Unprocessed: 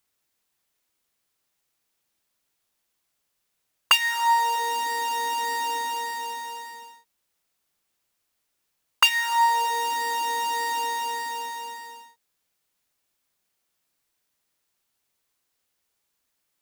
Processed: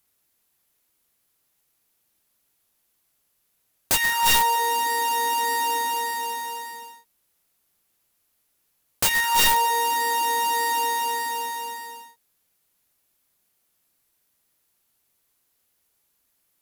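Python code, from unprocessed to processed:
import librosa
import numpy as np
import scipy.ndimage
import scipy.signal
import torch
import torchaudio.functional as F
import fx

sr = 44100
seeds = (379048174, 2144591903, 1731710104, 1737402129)

y = fx.peak_eq(x, sr, hz=12000.0, db=9.5, octaves=0.52)
y = (np.mod(10.0 ** (16.5 / 20.0) * y + 1.0, 2.0) - 1.0) / 10.0 ** (16.5 / 20.0)
y = fx.low_shelf(y, sr, hz=440.0, db=4.0)
y = y * 10.0 ** (2.5 / 20.0)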